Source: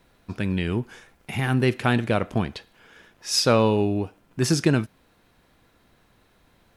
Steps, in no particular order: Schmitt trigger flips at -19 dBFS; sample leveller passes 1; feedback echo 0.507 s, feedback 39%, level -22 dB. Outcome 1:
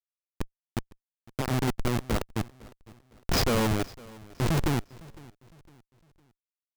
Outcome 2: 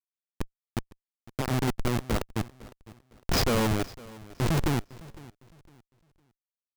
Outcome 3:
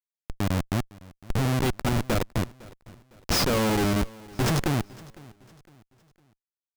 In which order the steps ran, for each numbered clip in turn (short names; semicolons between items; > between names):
Schmitt trigger > sample leveller > feedback echo; Schmitt trigger > feedback echo > sample leveller; sample leveller > Schmitt trigger > feedback echo